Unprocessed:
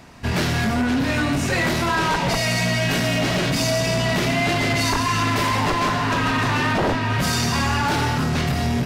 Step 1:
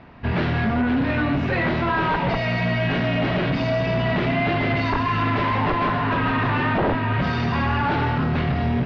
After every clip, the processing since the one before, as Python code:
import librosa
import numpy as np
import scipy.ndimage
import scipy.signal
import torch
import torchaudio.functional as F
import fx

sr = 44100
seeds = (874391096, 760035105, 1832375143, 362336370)

y = scipy.signal.sosfilt(scipy.signal.bessel(6, 2300.0, 'lowpass', norm='mag', fs=sr, output='sos'), x)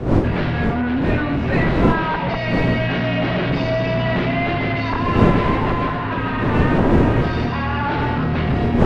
y = fx.dmg_wind(x, sr, seeds[0], corner_hz=340.0, level_db=-21.0)
y = fx.rider(y, sr, range_db=10, speed_s=2.0)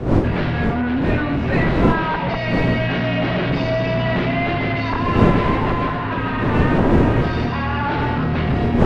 y = x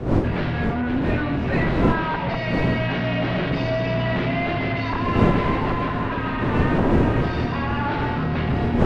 y = x + 10.0 ** (-13.0 / 20.0) * np.pad(x, (int(783 * sr / 1000.0), 0))[:len(x)]
y = y * 10.0 ** (-3.5 / 20.0)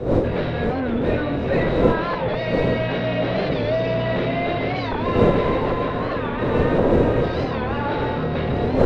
y = fx.small_body(x, sr, hz=(500.0, 3800.0), ring_ms=20, db=12)
y = fx.record_warp(y, sr, rpm=45.0, depth_cents=160.0)
y = y * 10.0 ** (-2.0 / 20.0)